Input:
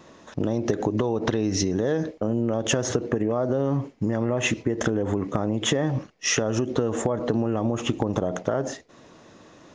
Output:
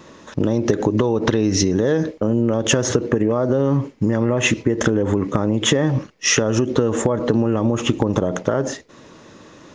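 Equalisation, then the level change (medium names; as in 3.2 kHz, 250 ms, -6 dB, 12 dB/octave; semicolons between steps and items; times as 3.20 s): peaking EQ 710 Hz -8 dB 0.25 oct; +6.5 dB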